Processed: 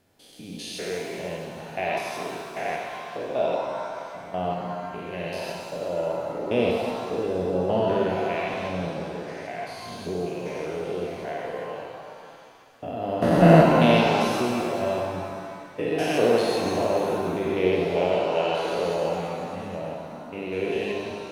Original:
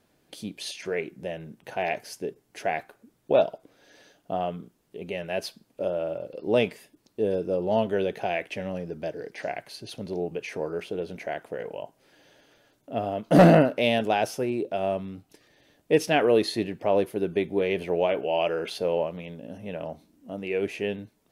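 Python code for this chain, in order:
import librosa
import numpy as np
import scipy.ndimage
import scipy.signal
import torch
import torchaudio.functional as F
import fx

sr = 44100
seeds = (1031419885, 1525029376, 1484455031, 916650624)

y = fx.spec_steps(x, sr, hold_ms=200)
y = fx.rev_shimmer(y, sr, seeds[0], rt60_s=2.1, semitones=7, shimmer_db=-8, drr_db=-0.5)
y = F.gain(torch.from_numpy(y), 1.0).numpy()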